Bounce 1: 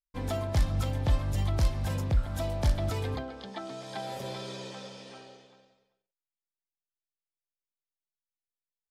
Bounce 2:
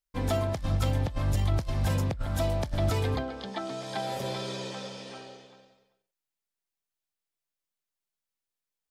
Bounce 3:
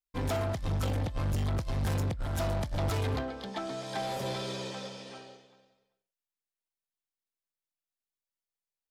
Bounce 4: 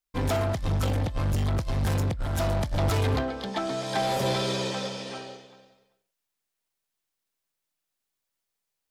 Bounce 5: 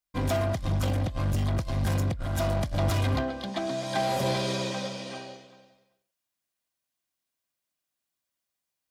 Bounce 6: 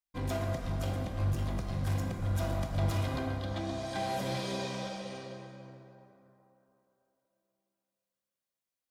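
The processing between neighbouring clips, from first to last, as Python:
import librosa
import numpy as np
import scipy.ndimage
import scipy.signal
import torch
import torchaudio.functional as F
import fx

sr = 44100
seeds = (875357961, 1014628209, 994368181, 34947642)

y1 = fx.over_compress(x, sr, threshold_db=-28.0, ratio=-0.5)
y1 = y1 * 10.0 ** (2.5 / 20.0)
y2 = 10.0 ** (-30.0 / 20.0) * np.tanh(y1 / 10.0 ** (-30.0 / 20.0))
y2 = fx.upward_expand(y2, sr, threshold_db=-53.0, expansion=1.5)
y2 = y2 * 10.0 ** (3.5 / 20.0)
y3 = fx.rider(y2, sr, range_db=4, speed_s=2.0)
y3 = y3 * 10.0 ** (5.5 / 20.0)
y4 = fx.notch_comb(y3, sr, f0_hz=440.0)
y5 = fx.rev_plate(y4, sr, seeds[0], rt60_s=3.4, hf_ratio=0.45, predelay_ms=0, drr_db=1.5)
y5 = y5 * 10.0 ** (-8.5 / 20.0)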